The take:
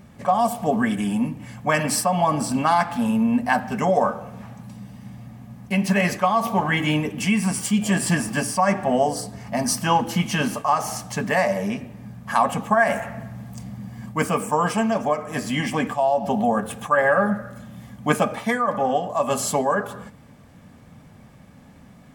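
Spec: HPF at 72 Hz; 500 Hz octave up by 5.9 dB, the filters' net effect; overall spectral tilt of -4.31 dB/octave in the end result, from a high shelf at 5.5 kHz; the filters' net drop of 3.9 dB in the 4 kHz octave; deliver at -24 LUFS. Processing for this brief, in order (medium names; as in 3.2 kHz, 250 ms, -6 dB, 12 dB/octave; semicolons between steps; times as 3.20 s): high-pass 72 Hz; peaking EQ 500 Hz +7.5 dB; peaking EQ 4 kHz -8 dB; treble shelf 5.5 kHz +4 dB; trim -4.5 dB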